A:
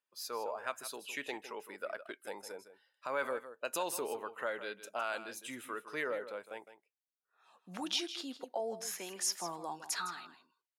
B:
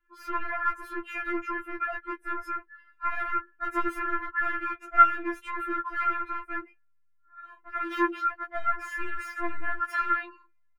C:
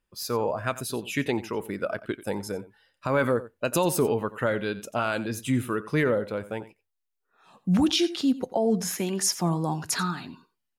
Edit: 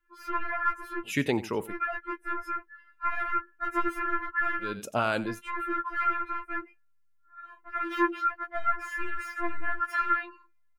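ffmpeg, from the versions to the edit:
-filter_complex "[2:a]asplit=2[a][b];[1:a]asplit=3[c][d][e];[c]atrim=end=1.13,asetpts=PTS-STARTPTS[f];[a]atrim=start=1.03:end=1.74,asetpts=PTS-STARTPTS[g];[d]atrim=start=1.64:end=4.82,asetpts=PTS-STARTPTS[h];[b]atrim=start=4.58:end=5.42,asetpts=PTS-STARTPTS[i];[e]atrim=start=5.18,asetpts=PTS-STARTPTS[j];[f][g]acrossfade=d=0.1:c1=tri:c2=tri[k];[k][h]acrossfade=d=0.1:c1=tri:c2=tri[l];[l][i]acrossfade=d=0.24:c1=tri:c2=tri[m];[m][j]acrossfade=d=0.24:c1=tri:c2=tri"

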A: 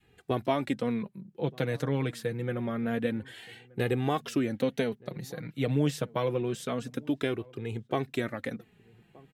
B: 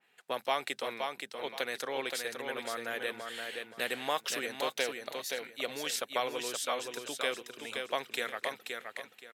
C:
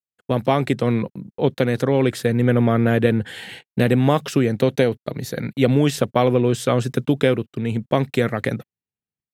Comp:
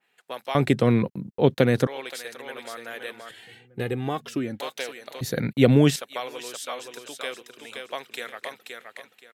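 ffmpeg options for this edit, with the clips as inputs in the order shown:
-filter_complex "[2:a]asplit=2[a][b];[1:a]asplit=4[c][d][e][f];[c]atrim=end=0.552[g];[a]atrim=start=0.548:end=1.872[h];[d]atrim=start=1.868:end=3.312[i];[0:a]atrim=start=3.308:end=4.602[j];[e]atrim=start=4.598:end=5.212[k];[b]atrim=start=5.208:end=5.962[l];[f]atrim=start=5.958[m];[g][h]acrossfade=d=0.004:c1=hsin:c2=hsin[n];[n][i]acrossfade=d=0.004:c1=hsin:c2=hsin[o];[o][j]acrossfade=d=0.004:c1=hsin:c2=hsin[p];[p][k]acrossfade=d=0.004:c1=hsin:c2=hsin[q];[q][l]acrossfade=d=0.004:c1=hsin:c2=hsin[r];[r][m]acrossfade=d=0.004:c1=hsin:c2=hsin"

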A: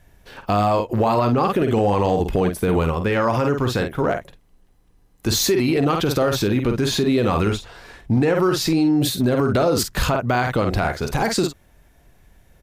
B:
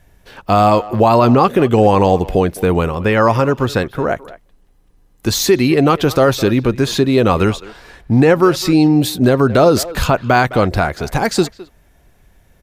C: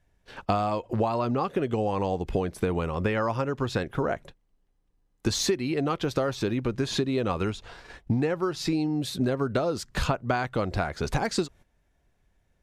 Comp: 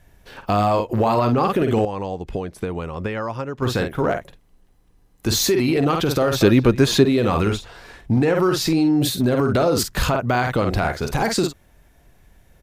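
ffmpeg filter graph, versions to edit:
-filter_complex "[0:a]asplit=3[a][b][c];[a]atrim=end=1.852[d];[2:a]atrim=start=1.848:end=3.622[e];[b]atrim=start=3.618:end=6.412[f];[1:a]atrim=start=6.408:end=7.052[g];[c]atrim=start=7.048[h];[d][e]acrossfade=d=0.004:c1=hsin:c2=hsin[i];[i][f]acrossfade=d=0.004:c1=hsin:c2=hsin[j];[j][g]acrossfade=d=0.004:c1=hsin:c2=hsin[k];[k][h]acrossfade=d=0.004:c1=hsin:c2=hsin"

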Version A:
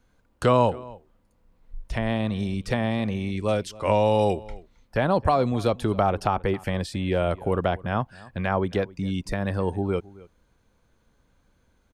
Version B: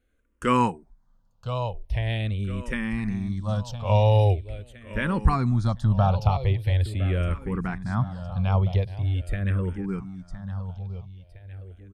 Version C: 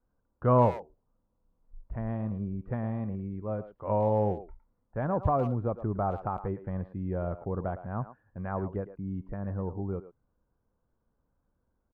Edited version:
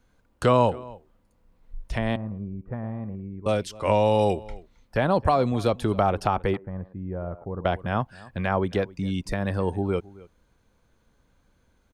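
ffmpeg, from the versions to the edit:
-filter_complex "[2:a]asplit=2[a][b];[0:a]asplit=3[c][d][e];[c]atrim=end=2.162[f];[a]atrim=start=2.158:end=3.462[g];[d]atrim=start=3.458:end=6.572[h];[b]atrim=start=6.568:end=7.652[i];[e]atrim=start=7.648[j];[f][g]acrossfade=d=0.004:c1=hsin:c2=hsin[k];[k][h]acrossfade=d=0.004:c1=hsin:c2=hsin[l];[l][i]acrossfade=d=0.004:c1=hsin:c2=hsin[m];[m][j]acrossfade=d=0.004:c1=hsin:c2=hsin"

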